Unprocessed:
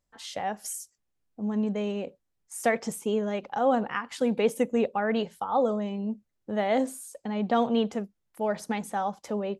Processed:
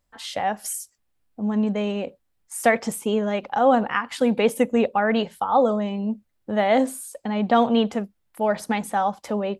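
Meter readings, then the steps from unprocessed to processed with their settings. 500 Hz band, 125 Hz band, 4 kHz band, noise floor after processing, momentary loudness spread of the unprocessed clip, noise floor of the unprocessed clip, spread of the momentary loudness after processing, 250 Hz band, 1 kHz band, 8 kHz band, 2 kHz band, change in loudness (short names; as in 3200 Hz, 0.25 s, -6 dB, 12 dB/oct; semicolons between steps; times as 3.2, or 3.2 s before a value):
+5.0 dB, +5.0 dB, +7.0 dB, -71 dBFS, 11 LU, -78 dBFS, 12 LU, +5.5 dB, +7.0 dB, +5.5 dB, +7.5 dB, +6.0 dB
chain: fifteen-band EQ 160 Hz -4 dB, 400 Hz -4 dB, 6300 Hz -5 dB; gain +7.5 dB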